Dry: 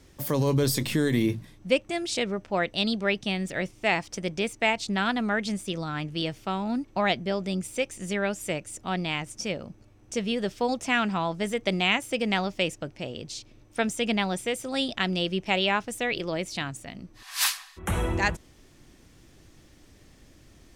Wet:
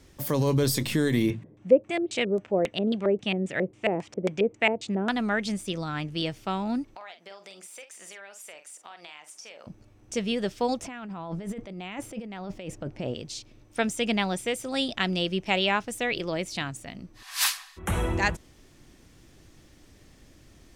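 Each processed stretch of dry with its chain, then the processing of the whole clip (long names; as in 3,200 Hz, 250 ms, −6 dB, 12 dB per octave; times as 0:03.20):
0:01.30–0:05.09: high-pass filter 96 Hz + high shelf with overshoot 3,700 Hz −10 dB, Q 1.5 + auto-filter low-pass square 3.7 Hz 470–7,500 Hz
0:06.95–0:09.67: Chebyshev high-pass filter 800 Hz + downward compressor 5 to 1, threshold −42 dBFS + double-tracking delay 46 ms −10 dB
0:10.83–0:13.14: high-shelf EQ 2,000 Hz −11.5 dB + compressor whose output falls as the input rises −36 dBFS
whole clip: no processing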